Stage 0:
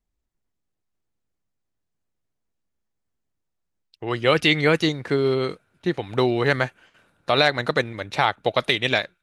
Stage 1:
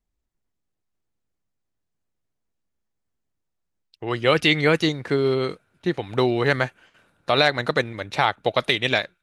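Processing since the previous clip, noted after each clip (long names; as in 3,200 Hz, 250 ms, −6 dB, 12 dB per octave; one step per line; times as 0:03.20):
no processing that can be heard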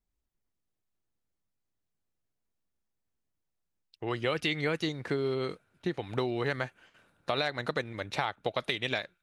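downward compressor 3 to 1, threshold −24 dBFS, peak gain reduction 9 dB
level −4.5 dB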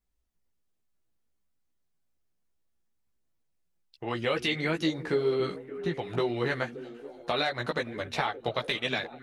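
echo through a band-pass that steps 287 ms, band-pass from 220 Hz, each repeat 0.7 octaves, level −9 dB
multi-voice chorus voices 4, 1.1 Hz, delay 15 ms, depth 3 ms
level +5 dB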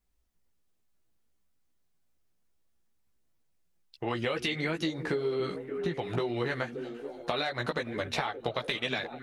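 downward compressor, threshold −31 dBFS, peak gain reduction 9 dB
level +3.5 dB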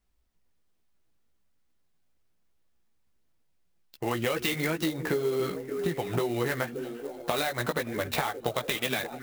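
converter with an unsteady clock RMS 0.029 ms
level +2.5 dB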